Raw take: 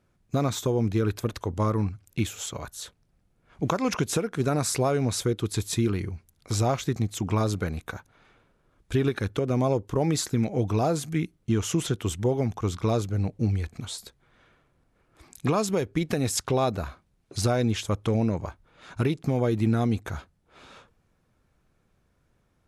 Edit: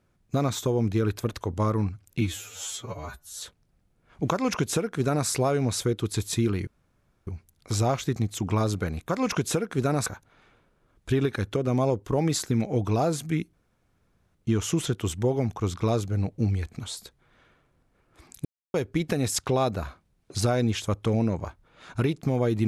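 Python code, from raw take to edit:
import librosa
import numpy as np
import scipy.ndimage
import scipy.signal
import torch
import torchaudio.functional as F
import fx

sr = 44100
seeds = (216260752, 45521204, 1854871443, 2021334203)

y = fx.edit(x, sr, fx.stretch_span(start_s=2.21, length_s=0.6, factor=2.0),
    fx.duplicate(start_s=3.71, length_s=0.97, to_s=7.89),
    fx.insert_room_tone(at_s=6.07, length_s=0.6),
    fx.insert_room_tone(at_s=11.36, length_s=0.82),
    fx.silence(start_s=15.46, length_s=0.29), tone=tone)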